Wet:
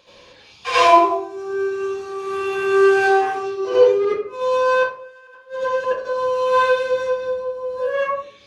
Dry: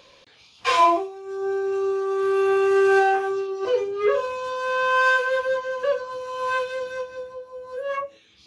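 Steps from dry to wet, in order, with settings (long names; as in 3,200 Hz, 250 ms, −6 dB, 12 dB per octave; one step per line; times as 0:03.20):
0:03.94–0:05.98: gate with flip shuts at −16 dBFS, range −32 dB
convolution reverb RT60 0.55 s, pre-delay 68 ms, DRR −10 dB
level −4 dB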